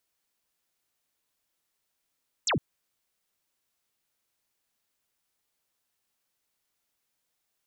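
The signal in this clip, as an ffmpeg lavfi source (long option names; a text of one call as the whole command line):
ffmpeg -f lavfi -i "aevalsrc='0.0708*clip(t/0.002,0,1)*clip((0.11-t)/0.002,0,1)*sin(2*PI*8400*0.11/log(95/8400)*(exp(log(95/8400)*t/0.11)-1))':duration=0.11:sample_rate=44100" out.wav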